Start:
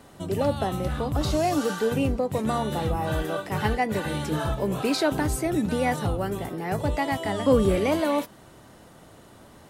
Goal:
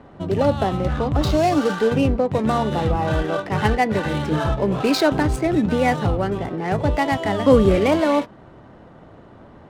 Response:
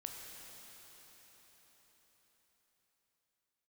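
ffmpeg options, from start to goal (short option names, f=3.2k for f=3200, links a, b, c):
-af "adynamicsmooth=sensitivity=7.5:basefreq=1.7k,volume=6dB"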